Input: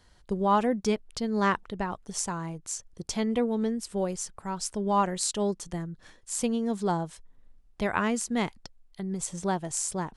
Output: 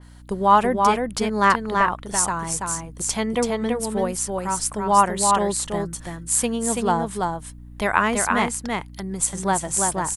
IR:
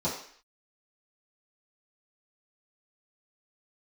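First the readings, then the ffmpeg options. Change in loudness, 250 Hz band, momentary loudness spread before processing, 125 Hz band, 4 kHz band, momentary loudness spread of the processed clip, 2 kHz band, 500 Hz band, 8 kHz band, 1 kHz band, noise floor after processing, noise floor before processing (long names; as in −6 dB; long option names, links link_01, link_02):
+8.0 dB, +3.5 dB, 10 LU, +4.5 dB, +6.5 dB, 10 LU, +10.5 dB, +6.0 dB, +10.5 dB, +11.0 dB, −41 dBFS, −59 dBFS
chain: -filter_complex "[0:a]firequalizer=gain_entry='entry(270,0);entry(950,8);entry(5600,4);entry(9400,14)':delay=0.05:min_phase=1,aeval=exprs='val(0)+0.00501*(sin(2*PI*60*n/s)+sin(2*PI*2*60*n/s)/2+sin(2*PI*3*60*n/s)/3+sin(2*PI*4*60*n/s)/4+sin(2*PI*5*60*n/s)/5)':channel_layout=same,asplit=2[link_01][link_02];[link_02]aecho=0:1:333:0.668[link_03];[link_01][link_03]amix=inputs=2:normalize=0,adynamicequalizer=threshold=0.0112:dfrequency=3400:dqfactor=0.7:tfrequency=3400:tqfactor=0.7:attack=5:release=100:ratio=0.375:range=3:mode=cutabove:tftype=highshelf,volume=2dB"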